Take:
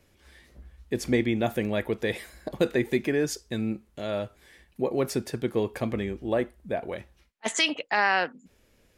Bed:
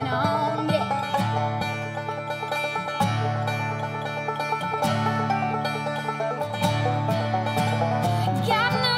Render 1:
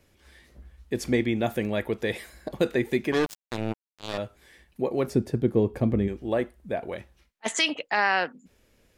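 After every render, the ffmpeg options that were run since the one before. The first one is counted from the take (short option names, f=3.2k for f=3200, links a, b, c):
-filter_complex "[0:a]asettb=1/sr,asplit=3[a][b][c];[a]atrim=end=3.124[d];[b]atrim=start=3.12:end=4.18,asetpts=PTS-STARTPTS,afade=t=in:d=0.004:c=qsin,afade=t=out:st=1.056:d=0.004:c=qsin,acrusher=bits=3:mix=0:aa=0.5[e];[c]atrim=start=4.176[f];[d][e]acrossfade=d=0.004:c1=hsin:c2=qsin[g];[g][f]acrossfade=d=0.004:c1=qsin:c2=hsin,asettb=1/sr,asplit=3[h][i][j];[h]atrim=end=5.074[k];[i]atrim=start=5.07:end=6.08,asetpts=PTS-STARTPTS,afade=t=in:d=0.004:c=qsin,afade=t=out:st=1.006:d=0.004:c=qsin,tiltshelf=f=650:g=8.5[l];[j]atrim=start=6.076[m];[k][l]acrossfade=d=0.004:c1=hsin:c2=qsin[n];[n][m]acrossfade=d=0.004:c1=qsin:c2=hsin"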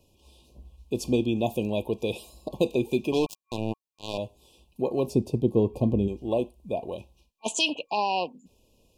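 -af "afftfilt=real='re*(1-between(b*sr/4096,1100,2400))':imag='im*(1-between(b*sr/4096,1100,2400))':win_size=4096:overlap=0.75"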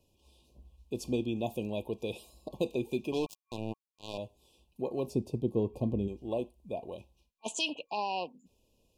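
-af "volume=-7.5dB"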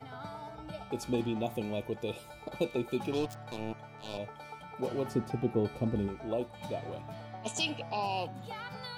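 -filter_complex "[1:a]volume=-20.5dB[a];[0:a][a]amix=inputs=2:normalize=0"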